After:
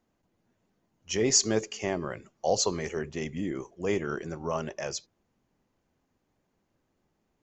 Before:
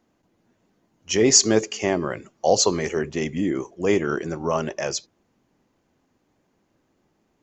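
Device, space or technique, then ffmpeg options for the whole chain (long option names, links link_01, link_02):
low shelf boost with a cut just above: -af "lowshelf=frequency=70:gain=8,equalizer=frequency=300:width_type=o:width=0.58:gain=-3,volume=-7.5dB"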